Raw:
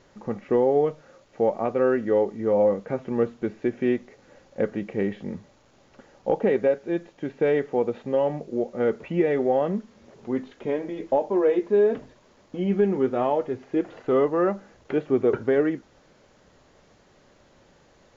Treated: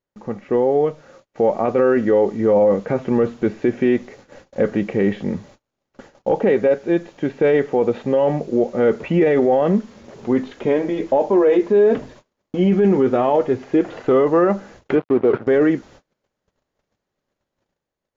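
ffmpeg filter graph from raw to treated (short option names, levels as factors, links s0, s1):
-filter_complex "[0:a]asettb=1/sr,asplit=3[s0][s1][s2];[s0]atrim=end=14.954[s3];[s1]atrim=start=14.95:end=15.47,asetpts=PTS-STARTPTS,afade=t=in:d=0.004:c=qsin,afade=t=out:st=0.516:d=0.004:c=qsin,aeval=exprs='sgn(val(0))*max(abs(val(0))-0.0126,0)':c=same,highpass=120,lowpass=2200[s4];[s2]atrim=start=15.466[s5];[s3][s4]acrossfade=d=0.004:c1=hsin:c2=qsin[s6];[s6][s5]acrossfade=d=0.004:c1=qsin:c2=hsin,agate=range=0.0251:threshold=0.00251:ratio=16:detection=peak,dynaudnorm=f=510:g=5:m=2.82,alimiter=limit=0.299:level=0:latency=1:release=10,volume=1.33"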